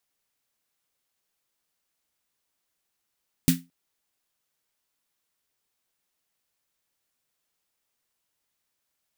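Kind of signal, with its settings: snare drum length 0.22 s, tones 170 Hz, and 260 Hz, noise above 1.6 kHz, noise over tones -6 dB, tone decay 0.24 s, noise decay 0.20 s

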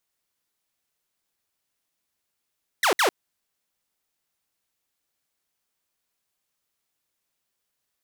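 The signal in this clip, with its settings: burst of laser zaps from 2.1 kHz, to 320 Hz, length 0.10 s saw, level -15 dB, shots 2, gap 0.06 s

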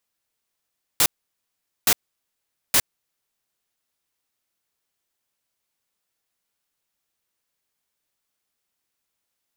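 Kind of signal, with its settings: noise bursts white, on 0.06 s, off 0.81 s, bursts 3, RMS -16.5 dBFS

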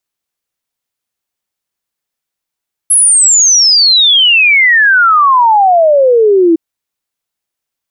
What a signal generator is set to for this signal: log sweep 11 kHz -> 320 Hz 3.66 s -4 dBFS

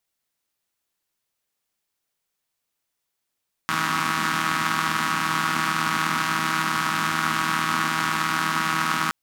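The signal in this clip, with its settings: four-cylinder engine model, steady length 5.42 s, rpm 4800, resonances 230/1200 Hz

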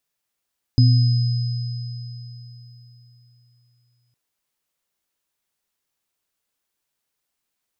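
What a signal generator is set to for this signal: sine partials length 3.36 s, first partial 120 Hz, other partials 256/5040 Hz, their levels -9.5/-15.5 dB, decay 3.61 s, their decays 0.92/4.03 s, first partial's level -9.5 dB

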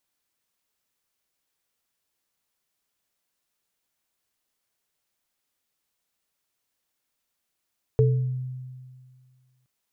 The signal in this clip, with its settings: sine partials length 1.67 s, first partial 128 Hz, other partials 439 Hz, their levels -1 dB, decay 1.94 s, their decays 0.45 s, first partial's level -15.5 dB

